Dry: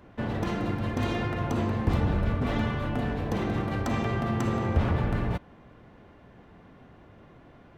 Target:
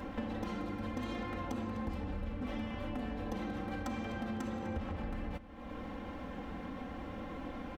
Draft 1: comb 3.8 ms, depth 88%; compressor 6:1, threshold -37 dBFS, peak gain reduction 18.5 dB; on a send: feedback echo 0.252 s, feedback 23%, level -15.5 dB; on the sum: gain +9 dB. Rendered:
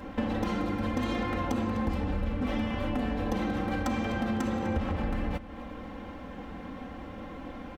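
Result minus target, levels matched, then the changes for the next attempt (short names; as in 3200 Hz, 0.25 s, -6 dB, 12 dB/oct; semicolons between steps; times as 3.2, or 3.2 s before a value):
compressor: peak gain reduction -8.5 dB
change: compressor 6:1, threshold -47.5 dBFS, peak gain reduction 27.5 dB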